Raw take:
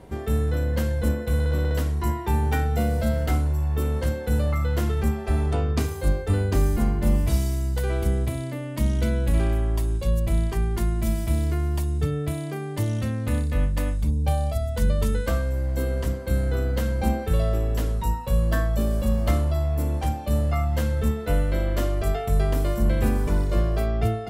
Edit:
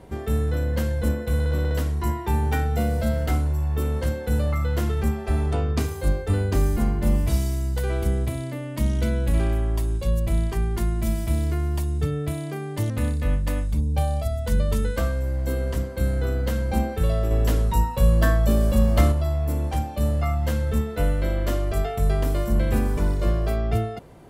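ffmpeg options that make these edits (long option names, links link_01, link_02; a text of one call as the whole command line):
ffmpeg -i in.wav -filter_complex "[0:a]asplit=4[link_01][link_02][link_03][link_04];[link_01]atrim=end=12.902[link_05];[link_02]atrim=start=13.198:end=17.612[link_06];[link_03]atrim=start=17.608:end=19.422,asetpts=PTS-STARTPTS,volume=4dB[link_07];[link_04]atrim=start=19.418[link_08];[link_05][link_06]acrossfade=duration=0.004:curve1=hsin:curve2=hsin[link_09];[link_09][link_07]acrossfade=duration=0.004:curve1=hsin:curve2=hsin[link_10];[link_10][link_08]acrossfade=duration=0.004:curve1=hsin:curve2=hsin" out.wav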